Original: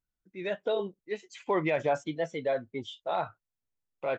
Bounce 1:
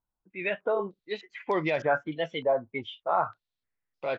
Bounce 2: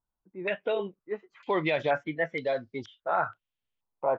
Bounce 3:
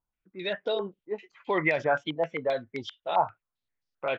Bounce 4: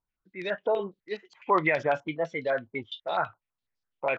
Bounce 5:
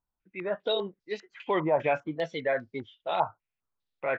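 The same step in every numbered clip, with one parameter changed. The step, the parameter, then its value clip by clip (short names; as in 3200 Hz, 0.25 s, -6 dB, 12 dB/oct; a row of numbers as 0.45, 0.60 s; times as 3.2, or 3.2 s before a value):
stepped low-pass, rate: 3.3, 2.1, 7.6, 12, 5 Hz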